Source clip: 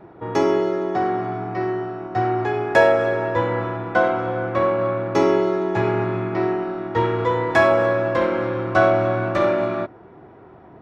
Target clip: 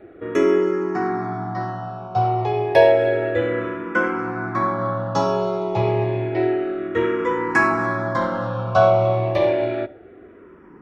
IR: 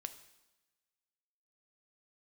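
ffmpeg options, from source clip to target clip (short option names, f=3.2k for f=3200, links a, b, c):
-filter_complex "[0:a]asplit=2[a][b];[1:a]atrim=start_sample=2205,afade=t=out:st=0.18:d=0.01,atrim=end_sample=8379[c];[b][c]afir=irnorm=-1:irlink=0,volume=-2dB[d];[a][d]amix=inputs=2:normalize=0,asplit=2[e][f];[f]afreqshift=-0.3[g];[e][g]amix=inputs=2:normalize=1,volume=-1dB"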